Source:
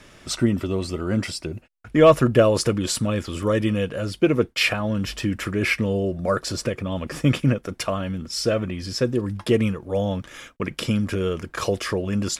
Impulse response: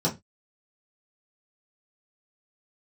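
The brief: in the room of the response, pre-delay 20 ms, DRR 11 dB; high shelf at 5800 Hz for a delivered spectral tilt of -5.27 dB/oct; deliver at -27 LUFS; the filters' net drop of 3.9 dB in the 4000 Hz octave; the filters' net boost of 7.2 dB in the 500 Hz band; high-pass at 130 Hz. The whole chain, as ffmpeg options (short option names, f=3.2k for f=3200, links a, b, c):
-filter_complex "[0:a]highpass=130,equalizer=f=500:t=o:g=8.5,equalizer=f=4k:t=o:g=-7.5,highshelf=f=5.8k:g=4,asplit=2[a][b];[1:a]atrim=start_sample=2205,adelay=20[c];[b][c]afir=irnorm=-1:irlink=0,volume=-21.5dB[d];[a][d]amix=inputs=2:normalize=0,volume=-9.5dB"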